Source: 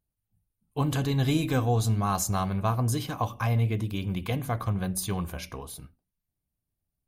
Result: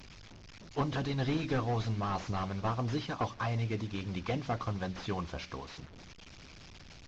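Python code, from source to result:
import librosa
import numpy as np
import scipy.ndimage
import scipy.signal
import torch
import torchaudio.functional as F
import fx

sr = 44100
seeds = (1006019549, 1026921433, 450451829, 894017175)

y = fx.delta_mod(x, sr, bps=32000, step_db=-41.5)
y = fx.hpss(y, sr, part='harmonic', gain_db=-9)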